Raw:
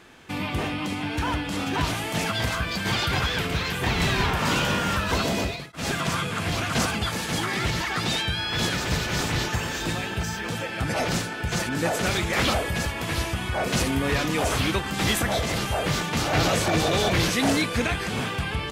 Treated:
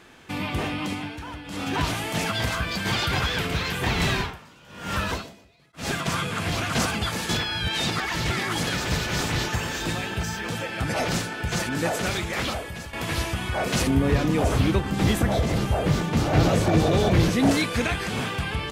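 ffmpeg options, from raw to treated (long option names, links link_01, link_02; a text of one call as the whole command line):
ffmpeg -i in.wav -filter_complex "[0:a]asettb=1/sr,asplit=3[link_01][link_02][link_03];[link_01]atrim=end=4.114[link_04];[link_02]atrim=start=4.11:end=6.06,asetpts=PTS-STARTPTS,afade=type=in:duration=0.004:curve=qsin,afade=type=out:start_time=1.946:duration=0.004:curve=qsin,aeval=exprs='val(0)*pow(10,-29*(0.5-0.5*cos(2*PI*1.1*n/s))/20)':channel_layout=same[link_05];[link_03]atrim=start=6.056[link_06];[link_04][link_05]acrossfade=duration=0.004:curve1=hsin:curve2=qsin[link_07];[link_07][link_06]acrossfade=duration=0.004:curve1=qsin:curve2=hsin,asettb=1/sr,asplit=3[link_08][link_09][link_10];[link_08]atrim=end=13.874[link_11];[link_09]atrim=start=13.87:end=17.51,asetpts=PTS-STARTPTS,afade=type=in:duration=0.004:curve=qsin,afade=type=out:start_time=3.636:duration=0.004:curve=qsin,tiltshelf=frequency=730:gain=6[link_12];[link_10]atrim=start=17.506[link_13];[link_11][link_12]acrossfade=duration=0.004:curve1=hsin:curve2=qsin[link_14];[link_14][link_13]acrossfade=duration=0.004:curve1=qsin:curve2=hsin,asplit=6[link_15][link_16][link_17][link_18][link_19][link_20];[link_15]atrim=end=1.19,asetpts=PTS-STARTPTS,afade=type=out:start_time=0.92:duration=0.27:silence=0.298538[link_21];[link_16]atrim=start=1.19:end=1.43,asetpts=PTS-STARTPTS,volume=-10.5dB[link_22];[link_17]atrim=start=1.43:end=7.292,asetpts=PTS-STARTPTS,afade=type=in:duration=0.27:silence=0.298538[link_23];[link_18]atrim=start=7.288:end=8.672,asetpts=PTS-STARTPTS,areverse[link_24];[link_19]atrim=start=8.668:end=12.93,asetpts=PTS-STARTPTS,afade=type=out:start_time=3.122:duration=1.14:silence=0.251189[link_25];[link_20]atrim=start=12.93,asetpts=PTS-STARTPTS,afade=type=in:duration=0.004:curve=hsin:silence=0.251189[link_26];[link_21][link_22][link_23]concat=n=3:v=0:a=1[link_27];[link_27][link_24]acrossfade=duration=0.004:curve1=hsin:curve2=hsin[link_28];[link_25][link_26]concat=n=2:v=0:a=1[link_29];[link_28][link_29]acrossfade=duration=0.004:curve1=hsin:curve2=hsin" out.wav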